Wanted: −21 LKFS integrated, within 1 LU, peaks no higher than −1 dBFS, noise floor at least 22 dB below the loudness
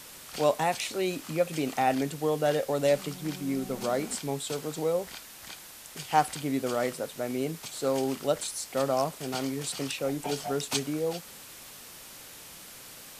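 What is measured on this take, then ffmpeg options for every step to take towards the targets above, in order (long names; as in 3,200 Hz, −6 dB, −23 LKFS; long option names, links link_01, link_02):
background noise floor −47 dBFS; target noise floor −52 dBFS; integrated loudness −30.0 LKFS; sample peak −8.5 dBFS; target loudness −21.0 LKFS
→ -af "afftdn=noise_reduction=6:noise_floor=-47"
-af "volume=9dB,alimiter=limit=-1dB:level=0:latency=1"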